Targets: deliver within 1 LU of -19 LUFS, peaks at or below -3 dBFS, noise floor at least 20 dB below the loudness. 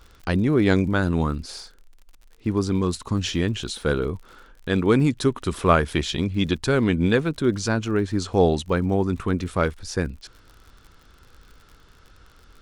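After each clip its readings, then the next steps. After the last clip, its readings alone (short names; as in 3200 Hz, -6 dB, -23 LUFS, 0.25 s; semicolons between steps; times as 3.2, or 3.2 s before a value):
ticks 49/s; loudness -23.0 LUFS; peak -4.0 dBFS; loudness target -19.0 LUFS
-> de-click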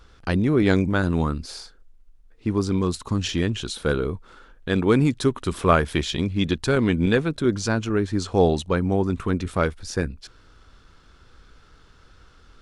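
ticks 0/s; loudness -23.0 LUFS; peak -4.0 dBFS; loudness target -19.0 LUFS
-> gain +4 dB; limiter -3 dBFS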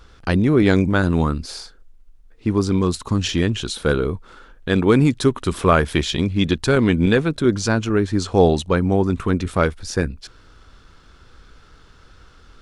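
loudness -19.0 LUFS; peak -3.0 dBFS; noise floor -49 dBFS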